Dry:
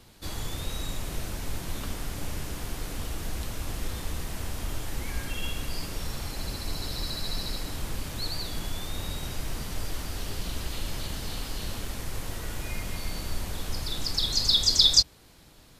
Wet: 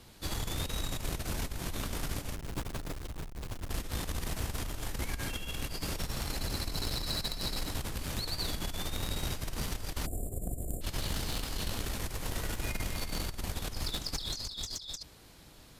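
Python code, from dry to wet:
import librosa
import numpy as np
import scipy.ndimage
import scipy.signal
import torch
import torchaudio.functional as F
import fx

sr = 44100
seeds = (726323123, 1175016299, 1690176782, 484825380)

y = fx.halfwave_hold(x, sr, at=(2.35, 3.7))
y = fx.over_compress(y, sr, threshold_db=-32.0, ratio=-1.0)
y = fx.spec_erase(y, sr, start_s=10.06, length_s=0.76, low_hz=770.0, high_hz=7000.0)
y = fx.cheby_harmonics(y, sr, harmonics=(3, 4, 6, 8), levels_db=(-20, -14, -12, -23), full_scale_db=-17.5)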